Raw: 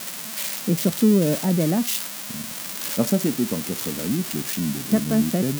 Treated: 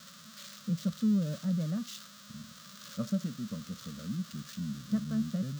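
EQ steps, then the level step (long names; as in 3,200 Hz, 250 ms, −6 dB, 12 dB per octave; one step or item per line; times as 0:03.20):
drawn EQ curve 210 Hz 0 dB, 350 Hz −23 dB, 570 Hz −6 dB, 840 Hz −25 dB, 1,200 Hz +1 dB, 2,300 Hz −14 dB, 3,600 Hz −4 dB, 6,800 Hz −8 dB, 10,000 Hz −20 dB, 16,000 Hz −17 dB
−9.0 dB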